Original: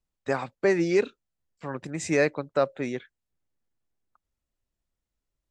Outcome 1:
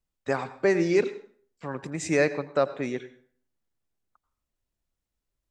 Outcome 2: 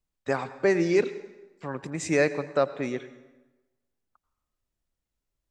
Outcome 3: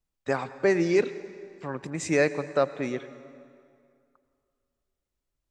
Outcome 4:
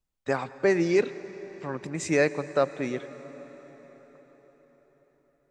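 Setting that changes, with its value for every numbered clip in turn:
plate-style reverb, RT60: 0.51 s, 1.1 s, 2.3 s, 5.3 s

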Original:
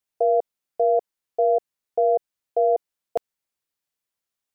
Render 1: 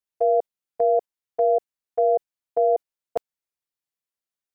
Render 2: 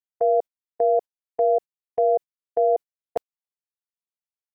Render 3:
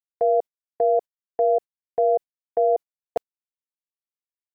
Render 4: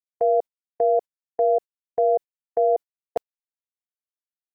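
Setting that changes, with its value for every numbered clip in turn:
gate, range: -7 dB, -19 dB, -55 dB, -35 dB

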